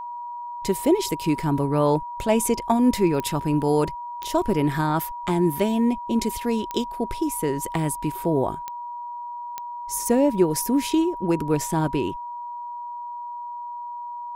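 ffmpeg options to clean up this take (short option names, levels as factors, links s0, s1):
-af "adeclick=t=4,bandreject=f=960:w=30"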